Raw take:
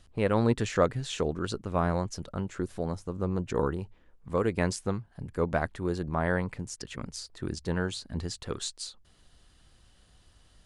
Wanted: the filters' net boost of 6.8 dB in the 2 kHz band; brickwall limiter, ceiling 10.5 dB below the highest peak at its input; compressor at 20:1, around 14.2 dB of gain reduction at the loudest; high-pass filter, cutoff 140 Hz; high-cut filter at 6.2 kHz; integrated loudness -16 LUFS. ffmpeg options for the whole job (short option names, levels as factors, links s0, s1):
-af "highpass=140,lowpass=6200,equalizer=f=2000:t=o:g=9,acompressor=threshold=0.0251:ratio=20,volume=20,alimiter=limit=0.668:level=0:latency=1"